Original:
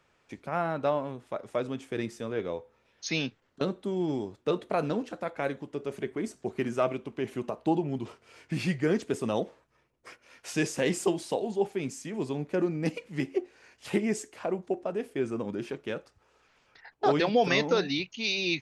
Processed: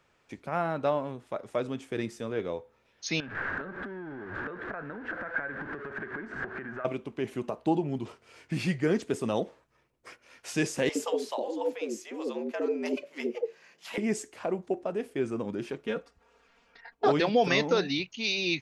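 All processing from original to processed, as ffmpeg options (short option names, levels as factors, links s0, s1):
-filter_complex "[0:a]asettb=1/sr,asplit=3[s0][s1][s2];[s0]atrim=end=3.204[s3];[s1]atrim=start=3.2:end=6.85,asetpts=PTS-STARTPTS,afade=t=in:d=0.004:c=qsin,afade=t=out:st=3.646:d=0.004:c=qsin,aeval=exprs='val(0)+0.5*0.0211*sgn(val(0))':c=same,acompressor=threshold=0.0126:ratio=12:attack=3.2:release=140:knee=1:detection=peak,lowpass=f=1600:t=q:w=10[s4];[s2]atrim=start=6.846[s5];[s3][s4]acrossfade=d=0.004:c1=hsin:c2=qsin[s6];[s6][s5]acrossfade=d=0.004:c1=qsin:c2=hsin,asettb=1/sr,asplit=3[s7][s8][s9];[s7]atrim=end=10.894[s10];[s8]atrim=start=10.89:end=13.98,asetpts=PTS-STARTPTS,afade=t=in:d=0.004:c=qsin,afade=t=out:st=3.086:d=0.004:c=qsin,equalizer=f=8700:t=o:w=0.32:g=-9,afreqshift=96,acrossover=split=610[s11][s12];[s11]adelay=60[s13];[s13][s12]amix=inputs=2:normalize=0,atrim=end_sample=136269[s14];[s9]atrim=start=13.976[s15];[s10][s14]acrossfade=d=0.004:c1=hsin:c2=qsin[s16];[s16][s15]acrossfade=d=0.004:c1=qsin:c2=hsin,asettb=1/sr,asplit=3[s17][s18][s19];[s17]atrim=end=15.854[s20];[s18]atrim=start=15.85:end=17.08,asetpts=PTS-STARTPTS,afade=t=in:d=0.004:c=qsin,afade=t=out:st=1.226:d=0.004:c=qsin,highshelf=f=4300:g=-6,aecho=1:1:4.3:0.85,atrim=end_sample=54243[s21];[s19]atrim=start=17.076[s22];[s20][s21]acrossfade=d=0.004:c1=hsin:c2=qsin[s23];[s23][s22]acrossfade=d=0.004:c1=qsin:c2=hsin"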